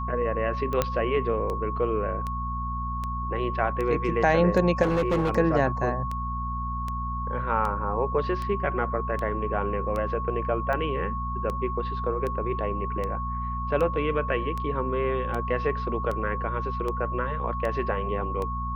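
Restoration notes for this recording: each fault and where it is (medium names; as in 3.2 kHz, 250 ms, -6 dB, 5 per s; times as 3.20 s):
hum 60 Hz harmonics 4 -32 dBFS
tick 78 rpm -19 dBFS
whine 1.1 kHz -31 dBFS
0.82 s: pop -9 dBFS
4.82–5.30 s: clipped -19.5 dBFS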